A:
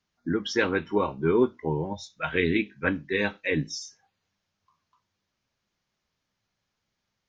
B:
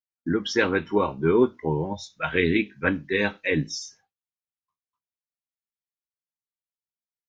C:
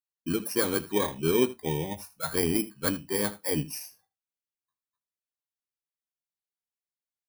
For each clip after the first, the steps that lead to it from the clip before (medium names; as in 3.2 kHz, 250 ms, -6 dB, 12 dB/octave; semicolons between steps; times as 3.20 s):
expander -53 dBFS; trim +2.5 dB
bit-reversed sample order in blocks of 16 samples; delay 79 ms -18 dB; trim -4.5 dB